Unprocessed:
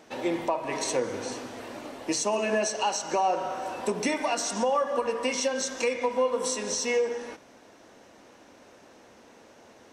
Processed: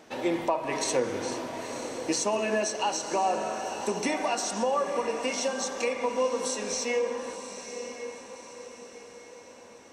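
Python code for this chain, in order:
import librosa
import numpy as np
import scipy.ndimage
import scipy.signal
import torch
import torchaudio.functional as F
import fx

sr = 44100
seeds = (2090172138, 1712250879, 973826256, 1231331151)

y = fx.rider(x, sr, range_db=4, speed_s=2.0)
y = fx.echo_diffused(y, sr, ms=977, feedback_pct=47, wet_db=-9.5)
y = F.gain(torch.from_numpy(y), -1.5).numpy()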